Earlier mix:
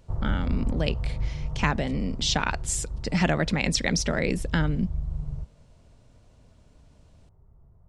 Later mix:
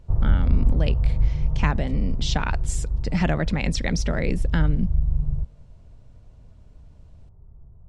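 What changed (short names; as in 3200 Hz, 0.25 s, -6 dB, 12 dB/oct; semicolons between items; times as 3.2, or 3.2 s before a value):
speech: add bell 240 Hz -4 dB 2.8 oct; master: add tilt -2 dB/oct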